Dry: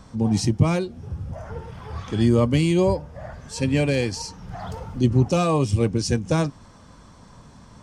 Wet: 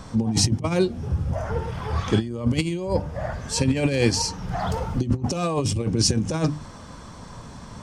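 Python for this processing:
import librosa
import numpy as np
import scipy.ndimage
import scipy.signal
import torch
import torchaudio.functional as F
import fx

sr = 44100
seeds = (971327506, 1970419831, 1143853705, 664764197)

y = fx.hum_notches(x, sr, base_hz=50, count=6)
y = fx.over_compress(y, sr, threshold_db=-24.0, ratio=-0.5)
y = y * librosa.db_to_amplitude(3.5)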